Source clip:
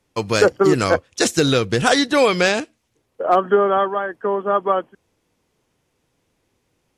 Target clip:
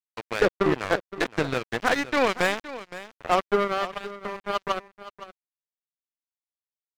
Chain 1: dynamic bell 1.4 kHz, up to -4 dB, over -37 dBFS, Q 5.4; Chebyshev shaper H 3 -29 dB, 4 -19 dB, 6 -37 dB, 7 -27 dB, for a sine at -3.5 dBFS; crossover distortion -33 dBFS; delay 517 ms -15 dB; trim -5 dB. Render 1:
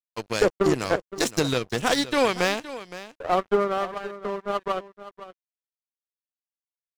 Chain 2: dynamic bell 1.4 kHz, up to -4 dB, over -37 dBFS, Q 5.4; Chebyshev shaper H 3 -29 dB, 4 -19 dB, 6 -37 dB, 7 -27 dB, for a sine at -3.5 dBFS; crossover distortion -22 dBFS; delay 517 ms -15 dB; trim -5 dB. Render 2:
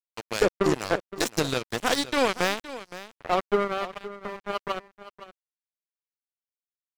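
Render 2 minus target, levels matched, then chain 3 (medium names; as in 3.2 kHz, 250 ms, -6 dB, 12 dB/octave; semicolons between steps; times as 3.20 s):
2 kHz band -2.0 dB
dynamic bell 1.4 kHz, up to -4 dB, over -37 dBFS, Q 5.4; resonant low-pass 2 kHz, resonance Q 1.8; Chebyshev shaper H 3 -29 dB, 4 -19 dB, 6 -37 dB, 7 -27 dB, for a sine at -3.5 dBFS; crossover distortion -22 dBFS; delay 517 ms -15 dB; trim -5 dB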